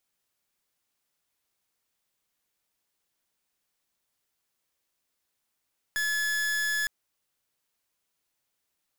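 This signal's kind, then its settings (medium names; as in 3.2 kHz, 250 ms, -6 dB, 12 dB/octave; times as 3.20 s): pulse 1.71 kHz, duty 42% -28 dBFS 0.91 s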